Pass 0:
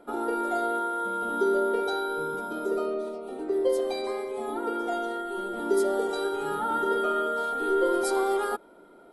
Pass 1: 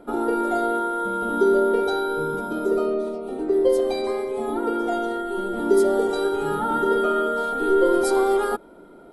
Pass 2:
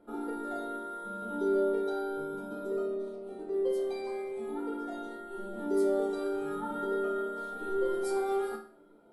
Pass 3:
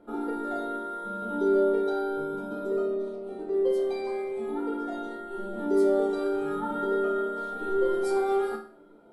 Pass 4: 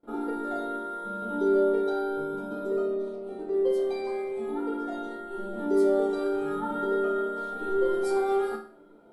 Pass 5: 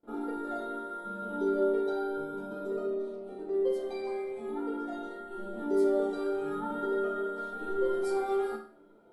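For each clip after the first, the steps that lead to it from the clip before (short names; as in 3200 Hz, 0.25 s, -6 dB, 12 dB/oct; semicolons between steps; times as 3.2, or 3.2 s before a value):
low shelf 270 Hz +11 dB; gain +3 dB
resonator bank D2 sus4, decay 0.44 s
high shelf 8700 Hz -10 dB; gain +5 dB
gate with hold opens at -48 dBFS
flange 0.26 Hz, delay 8.7 ms, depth 9.8 ms, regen -59%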